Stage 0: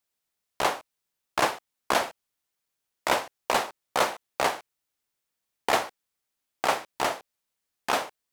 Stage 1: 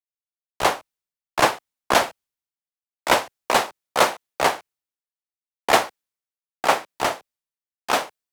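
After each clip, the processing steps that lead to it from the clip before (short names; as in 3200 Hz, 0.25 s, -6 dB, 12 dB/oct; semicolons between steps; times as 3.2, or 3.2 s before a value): three-band expander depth 100%; gain +3.5 dB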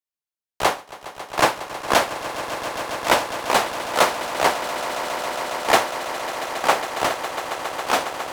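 swelling echo 0.137 s, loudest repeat 8, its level -14.5 dB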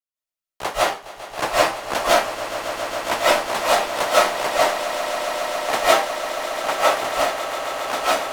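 reverb RT60 0.30 s, pre-delay 0.12 s, DRR -8.5 dB; gain -7.5 dB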